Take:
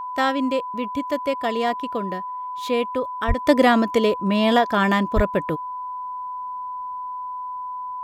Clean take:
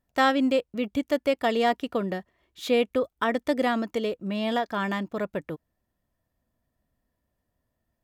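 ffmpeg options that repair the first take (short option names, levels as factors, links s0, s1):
-filter_complex "[0:a]bandreject=f=1000:w=30,asplit=3[s0][s1][s2];[s0]afade=t=out:st=3.27:d=0.02[s3];[s1]highpass=f=140:w=0.5412,highpass=f=140:w=1.3066,afade=t=in:st=3.27:d=0.02,afade=t=out:st=3.39:d=0.02[s4];[s2]afade=t=in:st=3.39:d=0.02[s5];[s3][s4][s5]amix=inputs=3:normalize=0,asplit=3[s6][s7][s8];[s6]afade=t=out:st=5.15:d=0.02[s9];[s7]highpass=f=140:w=0.5412,highpass=f=140:w=1.3066,afade=t=in:st=5.15:d=0.02,afade=t=out:st=5.27:d=0.02[s10];[s8]afade=t=in:st=5.27:d=0.02[s11];[s9][s10][s11]amix=inputs=3:normalize=0,asetnsamples=n=441:p=0,asendcmd='3.47 volume volume -9dB',volume=1"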